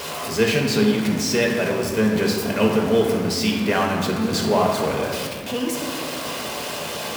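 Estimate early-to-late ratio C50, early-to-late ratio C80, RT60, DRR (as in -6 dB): 3.0 dB, 4.5 dB, 2.0 s, -1.0 dB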